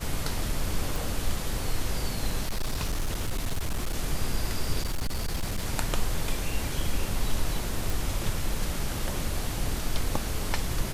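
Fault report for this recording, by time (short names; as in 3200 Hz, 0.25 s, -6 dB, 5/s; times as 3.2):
0.96 pop
2.43–3.95 clipped -24 dBFS
4.81–5.66 clipped -24.5 dBFS
7.9 pop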